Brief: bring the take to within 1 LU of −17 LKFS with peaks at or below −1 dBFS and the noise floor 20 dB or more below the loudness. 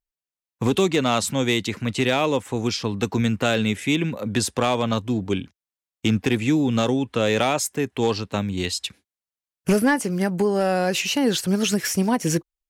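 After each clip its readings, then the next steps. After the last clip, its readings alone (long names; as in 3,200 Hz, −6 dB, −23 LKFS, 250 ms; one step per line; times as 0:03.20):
share of clipped samples 0.3%; peaks flattened at −11.5 dBFS; integrated loudness −22.5 LKFS; sample peak −11.5 dBFS; target loudness −17.0 LKFS
→ clipped peaks rebuilt −11.5 dBFS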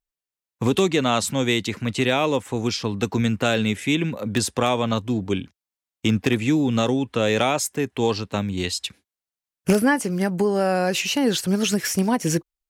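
share of clipped samples 0.0%; integrated loudness −22.5 LKFS; sample peak −2.5 dBFS; target loudness −17.0 LKFS
→ level +5.5 dB
brickwall limiter −1 dBFS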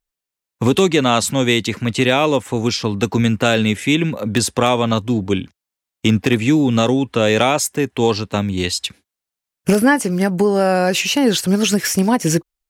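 integrated loudness −17.0 LKFS; sample peak −1.0 dBFS; background noise floor −86 dBFS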